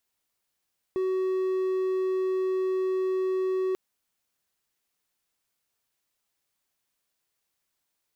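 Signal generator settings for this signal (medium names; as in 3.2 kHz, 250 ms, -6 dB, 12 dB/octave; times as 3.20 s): tone triangle 375 Hz -22 dBFS 2.79 s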